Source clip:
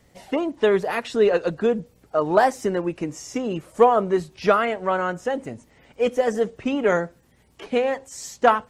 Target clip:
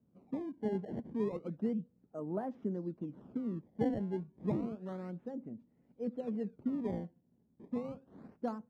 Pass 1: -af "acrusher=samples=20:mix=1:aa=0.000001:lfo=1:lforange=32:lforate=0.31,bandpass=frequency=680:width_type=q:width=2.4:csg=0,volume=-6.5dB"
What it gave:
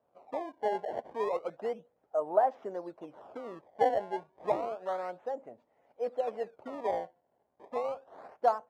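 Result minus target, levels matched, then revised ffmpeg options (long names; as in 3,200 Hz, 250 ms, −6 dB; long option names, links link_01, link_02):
250 Hz band −15.5 dB
-af "acrusher=samples=20:mix=1:aa=0.000001:lfo=1:lforange=32:lforate=0.31,bandpass=frequency=210:width_type=q:width=2.4:csg=0,volume=-6.5dB"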